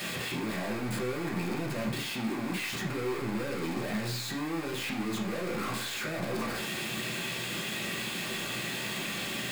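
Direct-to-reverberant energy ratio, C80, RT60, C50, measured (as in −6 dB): −3.0 dB, 12.0 dB, 0.50 s, 8.0 dB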